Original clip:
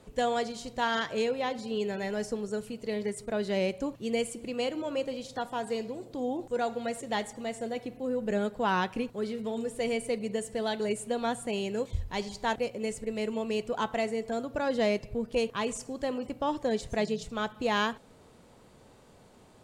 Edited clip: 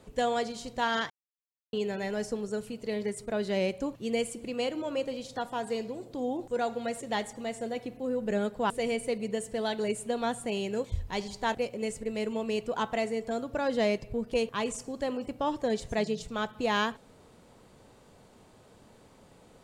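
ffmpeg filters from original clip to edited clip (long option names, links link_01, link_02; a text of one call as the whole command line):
ffmpeg -i in.wav -filter_complex "[0:a]asplit=4[link_01][link_02][link_03][link_04];[link_01]atrim=end=1.1,asetpts=PTS-STARTPTS,afade=type=out:start_time=1.096:duration=0.004:curve=hsin[link_05];[link_02]atrim=start=1.1:end=1.73,asetpts=PTS-STARTPTS,volume=0[link_06];[link_03]atrim=start=1.73:end=8.702,asetpts=PTS-STARTPTS,afade=type=in:duration=0.004:curve=hsin[link_07];[link_04]atrim=start=9.708[link_08];[link_05][link_06][link_07]concat=n=3:v=0:a=1[link_09];[link_09][link_08]acrossfade=duration=0.004:curve1=hsin:curve2=hsin" out.wav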